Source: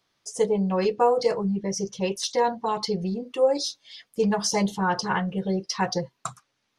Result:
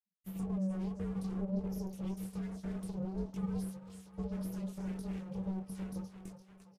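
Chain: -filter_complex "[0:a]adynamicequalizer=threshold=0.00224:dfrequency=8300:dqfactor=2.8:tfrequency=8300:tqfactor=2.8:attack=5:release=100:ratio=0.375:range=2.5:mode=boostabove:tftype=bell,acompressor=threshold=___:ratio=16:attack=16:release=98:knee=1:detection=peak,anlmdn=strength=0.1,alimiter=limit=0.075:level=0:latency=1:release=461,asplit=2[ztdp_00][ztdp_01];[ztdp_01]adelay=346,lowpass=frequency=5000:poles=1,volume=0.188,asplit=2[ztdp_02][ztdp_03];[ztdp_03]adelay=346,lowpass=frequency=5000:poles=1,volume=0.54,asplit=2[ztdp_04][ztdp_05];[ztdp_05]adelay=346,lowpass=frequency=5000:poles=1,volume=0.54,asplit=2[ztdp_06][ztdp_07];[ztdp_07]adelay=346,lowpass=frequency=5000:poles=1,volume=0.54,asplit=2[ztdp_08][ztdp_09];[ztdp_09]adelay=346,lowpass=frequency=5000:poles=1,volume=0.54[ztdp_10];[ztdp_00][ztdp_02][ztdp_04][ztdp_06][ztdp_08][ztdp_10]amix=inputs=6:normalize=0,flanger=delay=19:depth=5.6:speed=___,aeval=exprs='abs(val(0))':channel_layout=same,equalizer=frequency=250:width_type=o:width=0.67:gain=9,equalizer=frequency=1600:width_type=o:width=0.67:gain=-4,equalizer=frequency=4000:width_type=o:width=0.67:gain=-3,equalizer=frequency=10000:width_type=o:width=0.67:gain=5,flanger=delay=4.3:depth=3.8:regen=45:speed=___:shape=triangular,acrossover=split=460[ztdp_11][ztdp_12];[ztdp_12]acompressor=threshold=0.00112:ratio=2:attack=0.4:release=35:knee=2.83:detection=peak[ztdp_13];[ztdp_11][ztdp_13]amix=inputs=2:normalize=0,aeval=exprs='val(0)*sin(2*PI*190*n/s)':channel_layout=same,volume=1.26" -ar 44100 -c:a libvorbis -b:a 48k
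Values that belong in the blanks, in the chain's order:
0.0447, 1.8, 0.6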